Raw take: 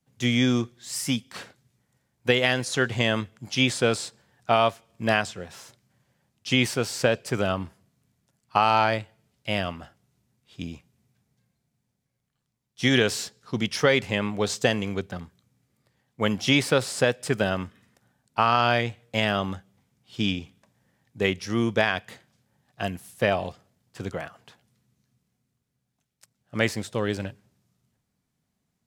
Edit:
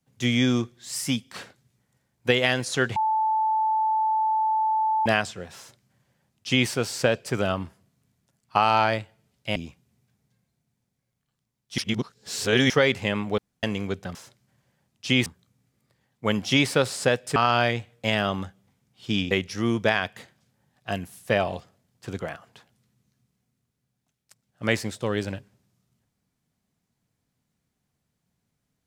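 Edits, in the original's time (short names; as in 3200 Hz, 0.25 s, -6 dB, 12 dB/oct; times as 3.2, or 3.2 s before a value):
2.96–5.06 bleep 875 Hz -20 dBFS
5.57–6.68 copy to 15.22
9.56–10.63 cut
12.85–13.77 reverse
14.45–14.7 room tone
17.32–18.46 cut
20.41–21.23 cut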